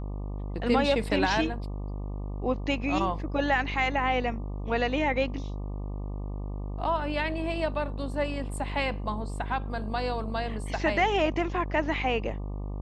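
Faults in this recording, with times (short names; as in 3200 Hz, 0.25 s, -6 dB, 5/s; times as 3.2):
buzz 50 Hz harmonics 24 -34 dBFS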